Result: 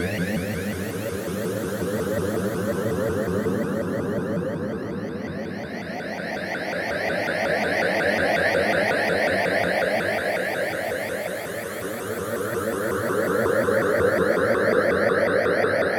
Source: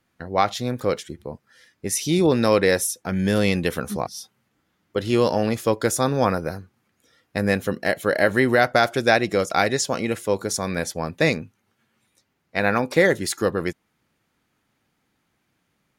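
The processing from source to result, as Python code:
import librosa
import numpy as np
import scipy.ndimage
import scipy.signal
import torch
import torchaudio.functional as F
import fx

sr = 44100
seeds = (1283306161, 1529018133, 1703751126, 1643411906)

y = fx.paulstretch(x, sr, seeds[0], factor=29.0, window_s=0.25, from_s=7.59)
y = fx.vibrato_shape(y, sr, shape='saw_up', rate_hz=5.5, depth_cents=250.0)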